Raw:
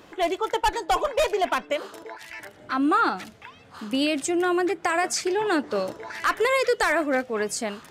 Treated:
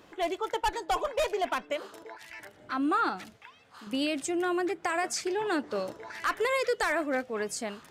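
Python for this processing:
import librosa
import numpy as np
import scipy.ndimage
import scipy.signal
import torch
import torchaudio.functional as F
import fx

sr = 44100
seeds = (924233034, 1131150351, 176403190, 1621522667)

y = fx.low_shelf(x, sr, hz=440.0, db=-10.0, at=(3.37, 3.87))
y = F.gain(torch.from_numpy(y), -6.0).numpy()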